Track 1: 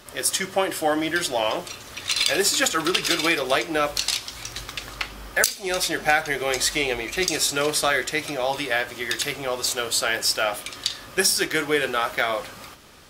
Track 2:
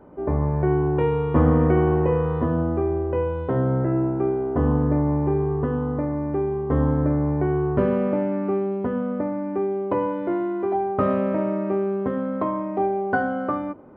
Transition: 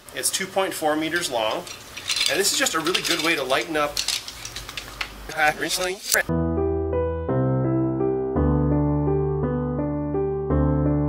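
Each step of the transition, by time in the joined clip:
track 1
0:05.29–0:06.29: reverse
0:06.29: continue with track 2 from 0:02.49

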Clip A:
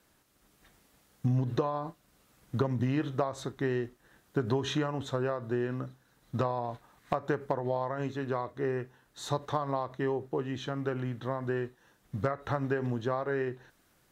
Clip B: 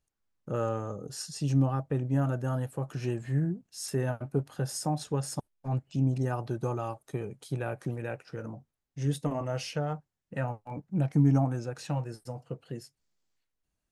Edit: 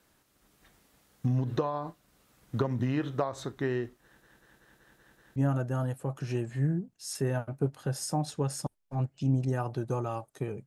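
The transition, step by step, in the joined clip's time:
clip A
0:04.03: stutter in place 0.19 s, 7 plays
0:05.36: continue with clip B from 0:02.09

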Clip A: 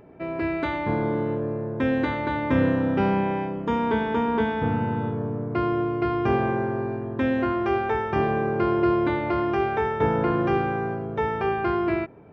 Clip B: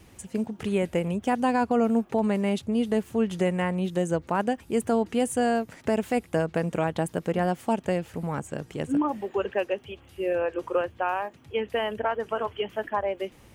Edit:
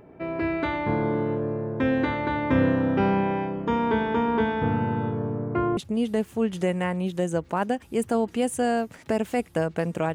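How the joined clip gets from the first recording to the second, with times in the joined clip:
clip A
0:05.34–0:05.77: low-pass filter 3,900 Hz → 1,200 Hz
0:05.77: continue with clip B from 0:02.55

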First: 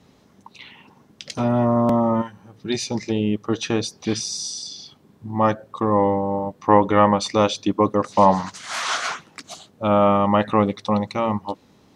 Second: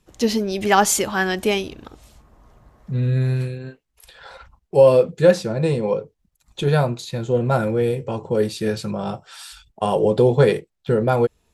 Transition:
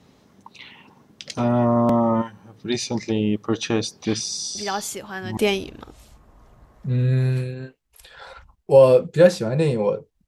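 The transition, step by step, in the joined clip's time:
first
0:04.55: mix in second from 0:00.59 0.82 s −11.5 dB
0:05.37: continue with second from 0:01.41

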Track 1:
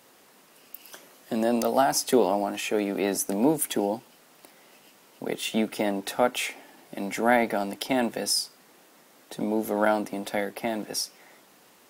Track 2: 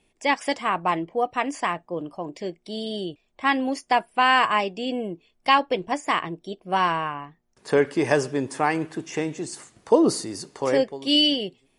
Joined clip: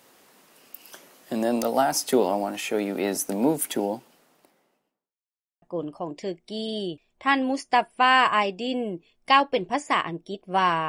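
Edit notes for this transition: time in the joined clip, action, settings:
track 1
0:03.68–0:05.19: fade out and dull
0:05.19–0:05.62: silence
0:05.62: continue with track 2 from 0:01.80

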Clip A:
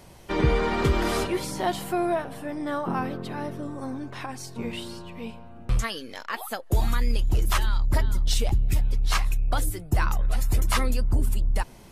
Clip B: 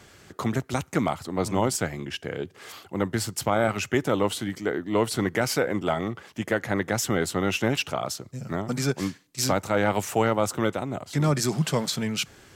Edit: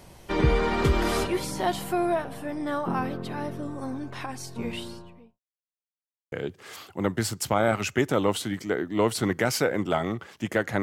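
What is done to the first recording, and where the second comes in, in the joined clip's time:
clip A
0:04.75–0:05.40: fade out and dull
0:05.40–0:06.32: silence
0:06.32: continue with clip B from 0:02.28

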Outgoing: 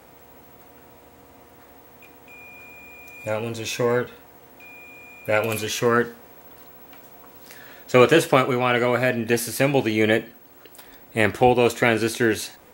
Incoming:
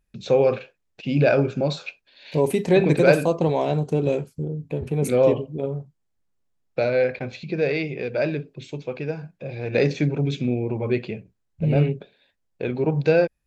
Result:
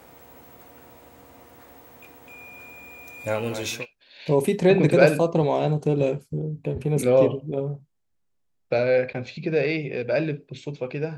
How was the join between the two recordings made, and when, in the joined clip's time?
outgoing
0:03.10–0:03.86: delay that plays each chunk backwards 175 ms, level −9 dB
0:03.77: continue with incoming from 0:01.83, crossfade 0.18 s

